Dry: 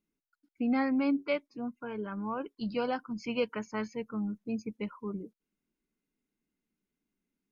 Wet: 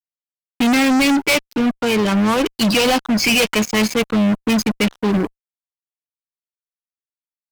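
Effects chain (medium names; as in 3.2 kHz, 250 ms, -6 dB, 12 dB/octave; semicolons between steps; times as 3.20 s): resonant high shelf 2 kHz +7 dB, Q 3; fuzz box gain 42 dB, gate -47 dBFS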